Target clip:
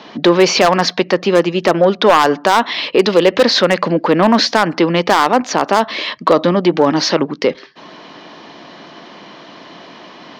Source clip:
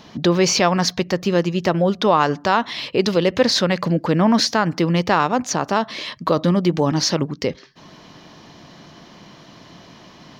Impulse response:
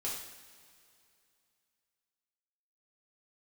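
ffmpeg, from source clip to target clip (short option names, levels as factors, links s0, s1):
-filter_complex "[0:a]acontrast=67,acrossover=split=230 4800:gain=0.0891 1 0.0794[s0][s1][s2];[s0][s1][s2]amix=inputs=3:normalize=0,aeval=exprs='0.596*(abs(mod(val(0)/0.596+3,4)-2)-1)':c=same,volume=1.41"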